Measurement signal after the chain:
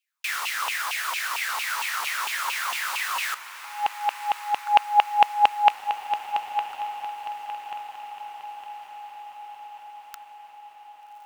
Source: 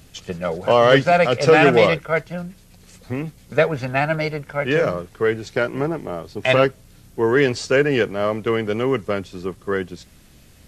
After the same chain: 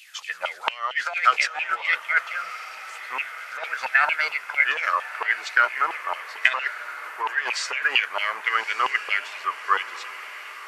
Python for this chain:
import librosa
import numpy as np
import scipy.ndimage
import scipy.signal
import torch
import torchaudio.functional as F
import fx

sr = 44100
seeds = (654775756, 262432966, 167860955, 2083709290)

p1 = fx.over_compress(x, sr, threshold_db=-19.0, ratio=-0.5)
p2 = fx.filter_lfo_highpass(p1, sr, shape='saw_down', hz=4.4, low_hz=870.0, high_hz=2800.0, q=7.1)
p3 = fx.low_shelf(p2, sr, hz=260.0, db=-11.0)
p4 = p3 + fx.echo_diffused(p3, sr, ms=1204, feedback_pct=60, wet_db=-13.5, dry=0)
y = p4 * 10.0 ** (-3.0 / 20.0)